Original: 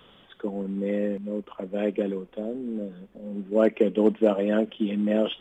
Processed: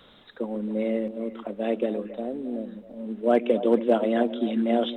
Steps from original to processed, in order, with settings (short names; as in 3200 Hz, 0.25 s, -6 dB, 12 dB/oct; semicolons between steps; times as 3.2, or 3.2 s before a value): speed mistake 44.1 kHz file played as 48 kHz; delay with a stepping band-pass 0.136 s, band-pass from 270 Hz, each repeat 1.4 oct, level -8.5 dB